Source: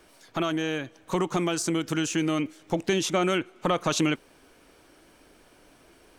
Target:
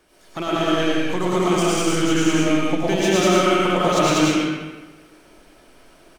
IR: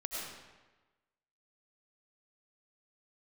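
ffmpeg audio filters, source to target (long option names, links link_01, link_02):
-filter_complex "[0:a]asplit=2[link_01][link_02];[link_02]acrusher=bits=3:mix=0:aa=0.5,volume=-9dB[link_03];[link_01][link_03]amix=inputs=2:normalize=0,aecho=1:1:110.8|192.4:0.708|1[link_04];[1:a]atrim=start_sample=2205[link_05];[link_04][link_05]afir=irnorm=-1:irlink=0"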